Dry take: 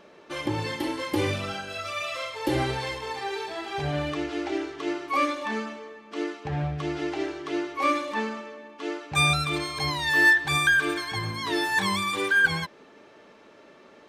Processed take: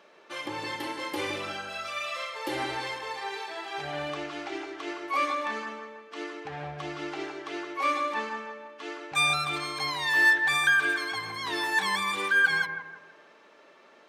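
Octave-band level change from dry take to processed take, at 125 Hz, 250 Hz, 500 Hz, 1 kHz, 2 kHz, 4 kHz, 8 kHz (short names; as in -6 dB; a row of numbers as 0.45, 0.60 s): -13.5, -8.5, -5.5, -1.5, -1.0, -2.0, -3.0 dB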